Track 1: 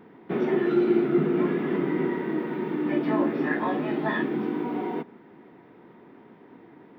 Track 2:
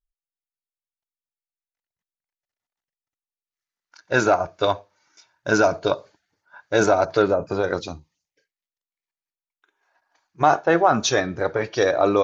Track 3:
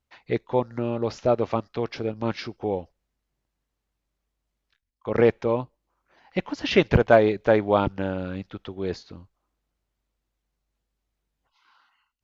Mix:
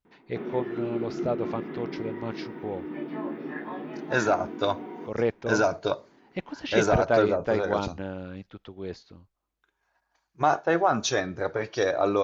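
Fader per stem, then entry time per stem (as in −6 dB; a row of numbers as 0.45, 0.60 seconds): −9.5, −5.5, −7.0 decibels; 0.05, 0.00, 0.00 seconds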